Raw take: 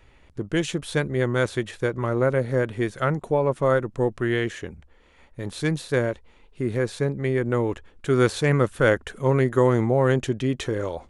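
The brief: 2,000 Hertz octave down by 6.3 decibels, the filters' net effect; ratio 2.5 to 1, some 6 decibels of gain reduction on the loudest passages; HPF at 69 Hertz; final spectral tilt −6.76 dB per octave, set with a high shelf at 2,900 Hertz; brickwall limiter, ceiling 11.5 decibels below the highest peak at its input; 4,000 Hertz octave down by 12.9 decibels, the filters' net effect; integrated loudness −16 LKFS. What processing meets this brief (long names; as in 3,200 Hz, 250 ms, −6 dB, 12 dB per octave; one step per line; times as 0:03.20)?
high-pass filter 69 Hz
parametric band 2,000 Hz −4 dB
high-shelf EQ 2,900 Hz −9 dB
parametric band 4,000 Hz −8.5 dB
downward compressor 2.5 to 1, threshold −24 dBFS
level +19 dB
brickwall limiter −5.5 dBFS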